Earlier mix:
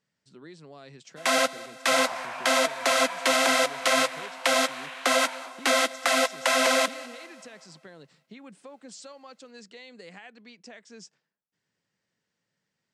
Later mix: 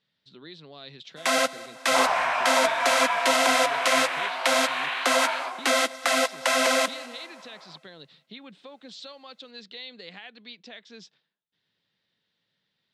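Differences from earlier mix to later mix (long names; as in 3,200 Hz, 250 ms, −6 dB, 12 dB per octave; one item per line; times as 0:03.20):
speech: add low-pass with resonance 3,700 Hz, resonance Q 5.7
second sound +11.5 dB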